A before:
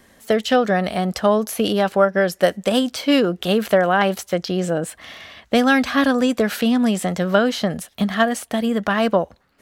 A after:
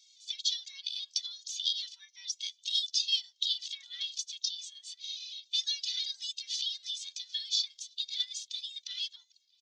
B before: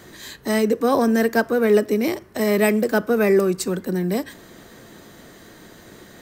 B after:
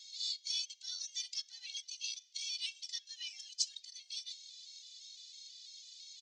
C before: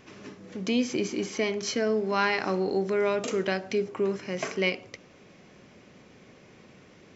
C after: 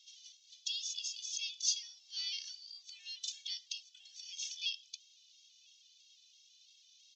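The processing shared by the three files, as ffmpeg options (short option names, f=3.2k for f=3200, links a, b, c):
-filter_complex "[0:a]asplit=2[a][b];[b]acompressor=threshold=-25dB:ratio=6,volume=0dB[c];[a][c]amix=inputs=2:normalize=0,afreqshift=370,asuperpass=centerf=4700:order=8:qfactor=1.4,asplit=2[d][e];[e]adelay=991.3,volume=-23dB,highshelf=f=4k:g=-22.3[f];[d][f]amix=inputs=2:normalize=0,afftfilt=real='re*gt(sin(2*PI*3*pts/sr)*(1-2*mod(floor(b*sr/1024/260),2)),0)':imag='im*gt(sin(2*PI*3*pts/sr)*(1-2*mod(floor(b*sr/1024/260),2)),0)':win_size=1024:overlap=0.75"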